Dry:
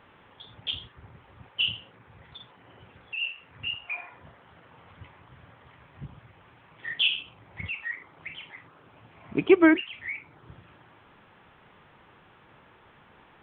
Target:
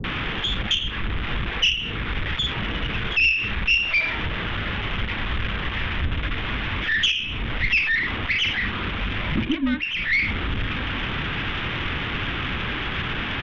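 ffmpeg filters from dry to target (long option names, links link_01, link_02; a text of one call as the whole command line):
ffmpeg -i in.wav -filter_complex "[0:a]aeval=exprs='val(0)+0.5*0.0708*sgn(val(0))':channel_layout=same,highshelf=frequency=2100:gain=8,alimiter=limit=-14.5dB:level=0:latency=1:release=422,adynamicsmooth=sensitivity=2:basefreq=1300,aresample=8000,aeval=exprs='clip(val(0),-1,0.1)':channel_layout=same,aresample=44100,afreqshift=-65,aeval=exprs='0.224*(cos(1*acos(clip(val(0)/0.224,-1,1)))-cos(1*PI/2))+0.0355*(cos(2*acos(clip(val(0)/0.224,-1,1)))-cos(2*PI/2))':channel_layout=same,equalizer=frequency=790:width=0.89:gain=-13.5,acrossover=split=430[link_01][link_02];[link_02]adelay=40[link_03];[link_01][link_03]amix=inputs=2:normalize=0,volume=5.5dB" out.wav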